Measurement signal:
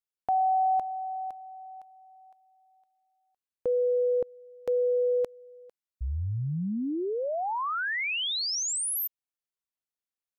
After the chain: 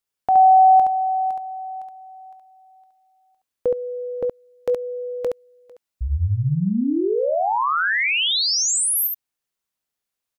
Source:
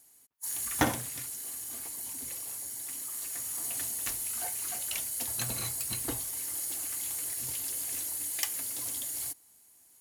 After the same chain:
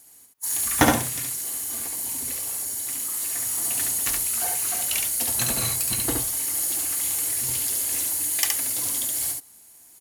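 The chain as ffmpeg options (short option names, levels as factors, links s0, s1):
-af "aecho=1:1:21|70:0.15|0.668,volume=2.51"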